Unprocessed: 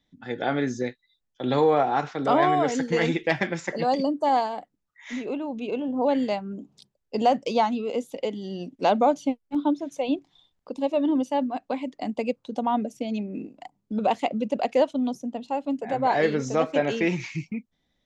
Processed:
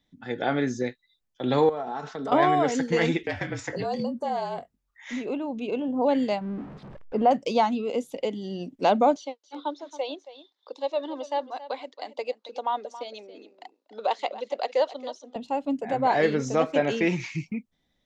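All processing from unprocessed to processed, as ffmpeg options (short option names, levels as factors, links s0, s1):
-filter_complex "[0:a]asettb=1/sr,asplit=3[s0][s1][s2];[s0]atrim=end=1.694[s3];[s1]atrim=start=1.69:end=2.32,asetpts=PTS-STARTPTS,afade=t=in:d=0.004:c=qsin,afade=t=out:st=0.626:d=0.004:c=qsin,equalizer=f=2300:w=2.8:g=-7.5,aecho=1:1:4.6:0.48,atrim=end_sample=27783,acompressor=threshold=0.0316:ratio=4:attack=3.2:release=140:knee=1:detection=peak[s4];[s2]atrim=start=2.316[s5];[s3][s4]acrossfade=d=0.004:c1=hsin:c2=qsin[s6];[s6][s5]acrossfade=d=0.004:c1=qsin:c2=hsin,asettb=1/sr,asplit=3[s7][s8][s9];[s7]atrim=end=3.234[s10];[s8]atrim=start=3.23:end=5.11,asetpts=PTS-STARTPTS,afade=t=in:d=0.004:c=qsin,afade=t=out:st=1.876:d=0.004:c=qsin,afreqshift=-46,acompressor=threshold=0.0398:ratio=2.5:attack=3.2:release=140:knee=1:detection=peak,asplit=2[s11][s12];[s12]adelay=22,volume=0.266[s13];[s11][s13]amix=inputs=2:normalize=0,atrim=end_sample=82908[s14];[s9]atrim=start=5.106[s15];[s10][s14]acrossfade=d=0.004:c1=hsin:c2=qsin[s16];[s16][s15]acrossfade=d=0.004:c1=qsin:c2=hsin,asettb=1/sr,asplit=3[s17][s18][s19];[s17]atrim=end=6.414[s20];[s18]atrim=start=6.41:end=7.31,asetpts=PTS-STARTPTS,afade=t=in:d=0.004:c=qsin,afade=t=out:st=0.896:d=0.004:c=qsin,aeval=exprs='val(0)+0.5*0.0158*sgn(val(0))':c=same,lowpass=1600[s21];[s19]atrim=start=7.306[s22];[s20][s21]acrossfade=d=0.004:c1=hsin:c2=qsin[s23];[s23][s22]acrossfade=d=0.004:c1=qsin:c2=hsin,asettb=1/sr,asplit=3[s24][s25][s26];[s24]atrim=end=9.164[s27];[s25]atrim=start=9.16:end=15.36,asetpts=PTS-STARTPTS,afade=t=in:d=0.004:c=qsin,afade=t=out:st=6.196:d=0.004:c=qsin,highpass=f=450:w=0.5412,highpass=f=450:w=1.3066,equalizer=f=680:t=q:w=4:g=-5,equalizer=f=2500:t=q:w=4:g=-6,equalizer=f=4000:t=q:w=4:g=7,lowpass=f=6400:w=0.5412,lowpass=f=6400:w=1.3066,aecho=1:1:275:0.178,atrim=end_sample=273420[s28];[s26]atrim=start=15.356[s29];[s27][s28]acrossfade=d=0.004:c1=hsin:c2=qsin[s30];[s30][s29]acrossfade=d=0.004:c1=qsin:c2=hsin"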